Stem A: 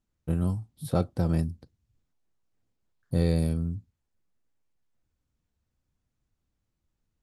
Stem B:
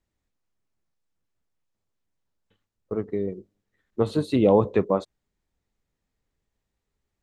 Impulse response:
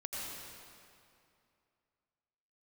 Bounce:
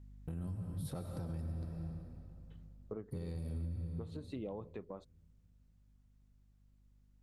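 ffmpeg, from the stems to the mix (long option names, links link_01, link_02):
-filter_complex "[0:a]acompressor=threshold=-28dB:ratio=6,asoftclip=type=tanh:threshold=-20.5dB,volume=-5dB,asplit=2[link_01][link_02];[link_02]volume=-3dB[link_03];[1:a]acompressor=threshold=-26dB:ratio=3,aeval=exprs='val(0)+0.00178*(sin(2*PI*50*n/s)+sin(2*PI*2*50*n/s)/2+sin(2*PI*3*50*n/s)/3+sin(2*PI*4*50*n/s)/4+sin(2*PI*5*50*n/s)/5)':channel_layout=same,volume=-1.5dB,afade=type=out:start_time=2.62:duration=0.58:silence=0.223872[link_04];[2:a]atrim=start_sample=2205[link_05];[link_03][link_05]afir=irnorm=-1:irlink=0[link_06];[link_01][link_04][link_06]amix=inputs=3:normalize=0,lowshelf=frequency=120:gain=5,alimiter=level_in=9dB:limit=-24dB:level=0:latency=1:release=271,volume=-9dB"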